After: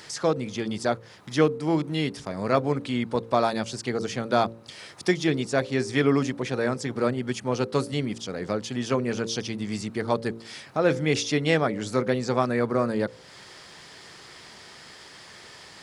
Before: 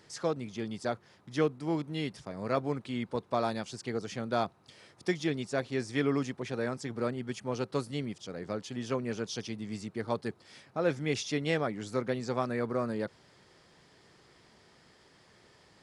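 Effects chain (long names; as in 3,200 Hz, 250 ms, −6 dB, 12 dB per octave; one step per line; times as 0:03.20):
hum removal 56.95 Hz, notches 10
one half of a high-frequency compander encoder only
level +8 dB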